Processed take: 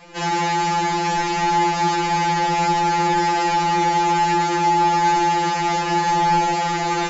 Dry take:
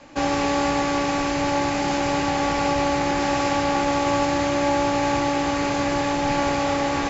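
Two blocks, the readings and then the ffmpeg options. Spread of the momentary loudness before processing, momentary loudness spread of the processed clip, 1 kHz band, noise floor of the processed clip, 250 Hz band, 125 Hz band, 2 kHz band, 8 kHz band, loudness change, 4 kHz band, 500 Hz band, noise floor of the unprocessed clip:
2 LU, 3 LU, +7.0 dB, -23 dBFS, -2.5 dB, +3.0 dB, +2.5 dB, n/a, +3.0 dB, +2.5 dB, -4.0 dB, -24 dBFS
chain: -filter_complex "[0:a]asplit=2[a][b];[b]alimiter=limit=-17.5dB:level=0:latency=1,volume=1dB[c];[a][c]amix=inputs=2:normalize=0,afftfilt=real='re*2.83*eq(mod(b,8),0)':imag='im*2.83*eq(mod(b,8),0)':win_size=2048:overlap=0.75"

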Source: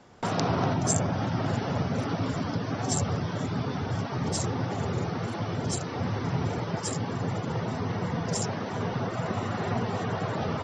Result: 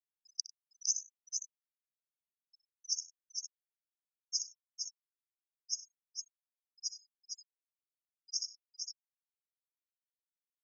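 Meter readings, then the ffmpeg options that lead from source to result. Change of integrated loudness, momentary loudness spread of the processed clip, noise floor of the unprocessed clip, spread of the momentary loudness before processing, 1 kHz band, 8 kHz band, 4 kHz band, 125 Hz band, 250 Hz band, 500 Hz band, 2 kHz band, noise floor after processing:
-10.0 dB, 14 LU, -34 dBFS, 5 LU, under -40 dB, -2.5 dB, -3.0 dB, under -40 dB, under -40 dB, under -40 dB, under -40 dB, under -85 dBFS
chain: -filter_complex "[0:a]afftfilt=real='re*gte(hypot(re,im),0.0316)':imag='im*gte(hypot(re,im),0.0316)':win_size=1024:overlap=0.75,asuperpass=centerf=5700:order=20:qfactor=3,asplit=2[a][b];[b]aecho=0:1:62|97|458:0.158|0.106|0.531[c];[a][c]amix=inputs=2:normalize=0,volume=3dB"

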